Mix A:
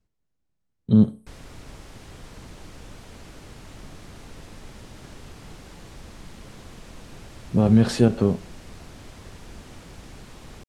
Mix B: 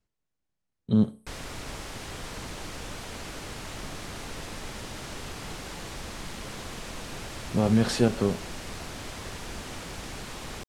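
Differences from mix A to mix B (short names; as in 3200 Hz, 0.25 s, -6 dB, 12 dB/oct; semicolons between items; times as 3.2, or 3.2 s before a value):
background +9.0 dB; master: add low shelf 400 Hz -7.5 dB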